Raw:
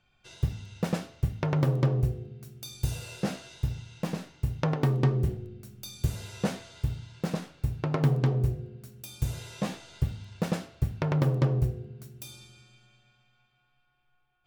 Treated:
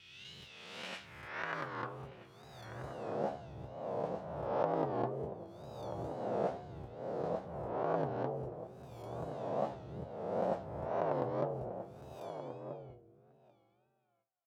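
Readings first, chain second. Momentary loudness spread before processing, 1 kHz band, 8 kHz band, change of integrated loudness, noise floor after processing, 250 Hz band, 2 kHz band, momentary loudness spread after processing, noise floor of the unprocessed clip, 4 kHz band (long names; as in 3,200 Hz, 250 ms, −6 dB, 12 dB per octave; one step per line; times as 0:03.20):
17 LU, +1.5 dB, below −15 dB, −9.0 dB, −74 dBFS, −11.5 dB, −4.0 dB, 14 LU, −71 dBFS, can't be measured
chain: peak hold with a rise ahead of every peak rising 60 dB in 1.17 s
tape wow and flutter 130 cents
noise gate with hold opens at −49 dBFS
dynamic equaliser 2,200 Hz, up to −4 dB, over −50 dBFS, Q 1.6
in parallel at +2 dB: downward compressor, threshold −35 dBFS, peak gain reduction 16 dB
on the sum: band-pass filter sweep 2,900 Hz → 670 Hz, 0:00.74–0:02.73
harmonic and percussive parts rebalanced harmonic −3 dB
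slap from a distant wall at 220 metres, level −9 dB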